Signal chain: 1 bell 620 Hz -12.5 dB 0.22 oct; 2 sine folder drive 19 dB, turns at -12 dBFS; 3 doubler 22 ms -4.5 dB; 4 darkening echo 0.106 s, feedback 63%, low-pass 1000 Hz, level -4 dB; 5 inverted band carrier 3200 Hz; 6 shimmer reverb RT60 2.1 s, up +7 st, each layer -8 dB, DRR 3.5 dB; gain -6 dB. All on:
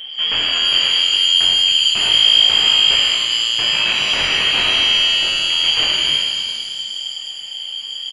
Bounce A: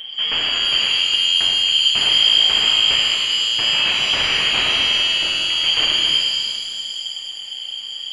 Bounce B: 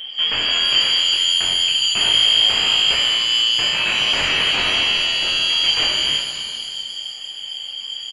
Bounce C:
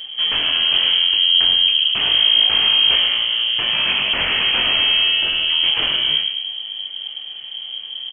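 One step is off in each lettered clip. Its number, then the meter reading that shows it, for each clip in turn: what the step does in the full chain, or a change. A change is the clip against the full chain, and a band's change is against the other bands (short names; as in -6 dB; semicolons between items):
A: 3, loudness change -2.0 LU; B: 4, 4 kHz band -2.5 dB; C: 6, momentary loudness spread change +1 LU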